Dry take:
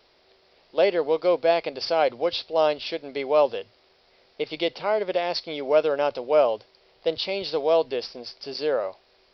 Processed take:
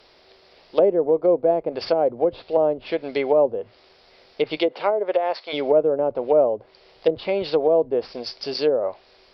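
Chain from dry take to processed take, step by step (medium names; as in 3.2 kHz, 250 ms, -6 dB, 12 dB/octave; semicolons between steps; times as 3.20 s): 4.56–5.52 s: high-pass 250 Hz -> 660 Hz 12 dB/octave; low-pass that closes with the level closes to 500 Hz, closed at -20 dBFS; trim +6.5 dB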